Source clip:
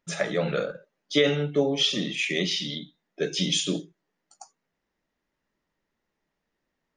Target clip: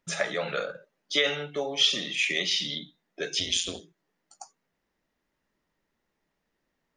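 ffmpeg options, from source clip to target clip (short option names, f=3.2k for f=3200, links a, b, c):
-filter_complex "[0:a]asplit=3[a][b][c];[a]afade=t=out:st=3.39:d=0.02[d];[b]aeval=exprs='val(0)*sin(2*PI*88*n/s)':c=same,afade=t=in:st=3.39:d=0.02,afade=t=out:st=3.8:d=0.02[e];[c]afade=t=in:st=3.8:d=0.02[f];[d][e][f]amix=inputs=3:normalize=0,acrossover=split=580[g][h];[g]acompressor=threshold=-41dB:ratio=6[i];[i][h]amix=inputs=2:normalize=0,volume=1.5dB"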